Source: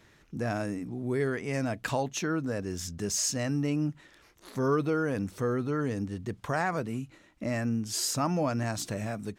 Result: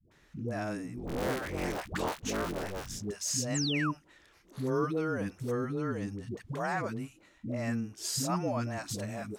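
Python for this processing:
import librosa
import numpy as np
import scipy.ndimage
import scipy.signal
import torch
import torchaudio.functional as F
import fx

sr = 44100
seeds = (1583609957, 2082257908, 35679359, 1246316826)

y = fx.cycle_switch(x, sr, every=3, mode='inverted', at=(0.96, 2.99), fade=0.02)
y = fx.spec_paint(y, sr, seeds[0], shape='fall', start_s=3.43, length_s=0.39, low_hz=940.0, high_hz=8200.0, level_db=-31.0)
y = fx.dispersion(y, sr, late='highs', ms=114.0, hz=450.0)
y = F.gain(torch.from_numpy(y), -3.5).numpy()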